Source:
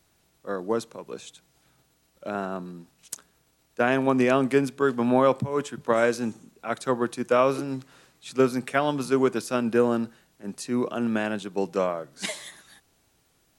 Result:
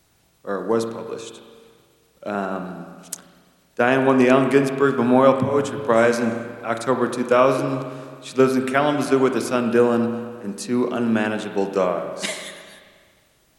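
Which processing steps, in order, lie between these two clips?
spring reverb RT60 1.8 s, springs 35/44 ms, chirp 20 ms, DRR 6 dB
level +4.5 dB

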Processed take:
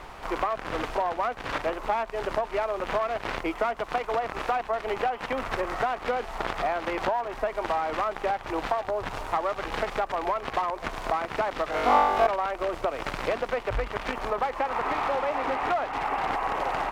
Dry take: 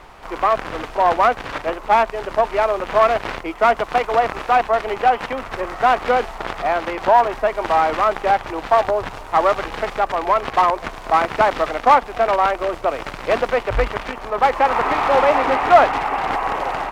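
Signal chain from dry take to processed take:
downward compressor 12 to 1, threshold −24 dBFS, peak gain reduction 18.5 dB
0:11.70–0:12.27: flutter between parallel walls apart 3.5 metres, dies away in 1.3 s

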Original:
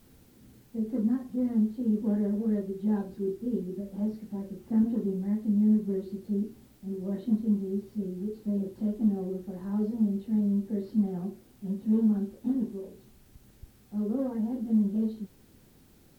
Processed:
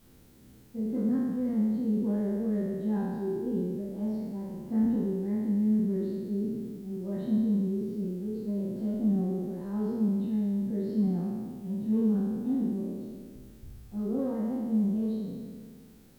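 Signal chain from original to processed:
peak hold with a decay on every bin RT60 1.98 s
level −3 dB

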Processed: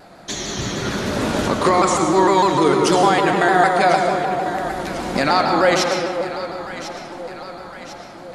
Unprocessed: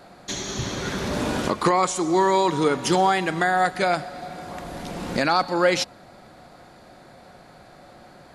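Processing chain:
mains-hum notches 60/120/180 Hz
delay that swaps between a low-pass and a high-pass 524 ms, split 880 Hz, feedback 72%, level −10 dB
comb and all-pass reverb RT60 2.4 s, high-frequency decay 0.45×, pre-delay 65 ms, DRR 2 dB
pitch modulation by a square or saw wave saw down 6.6 Hz, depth 100 cents
level +3 dB

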